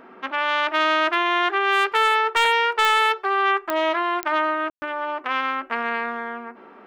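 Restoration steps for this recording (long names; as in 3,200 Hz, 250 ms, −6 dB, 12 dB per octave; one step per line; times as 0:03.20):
clipped peaks rebuilt −9 dBFS
click removal
hum removal 374.2 Hz, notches 7
ambience match 0:04.70–0:04.82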